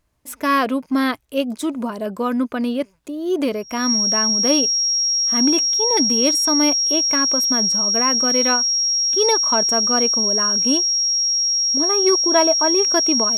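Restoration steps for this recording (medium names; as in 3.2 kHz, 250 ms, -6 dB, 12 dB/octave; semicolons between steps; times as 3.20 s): band-stop 5.6 kHz, Q 30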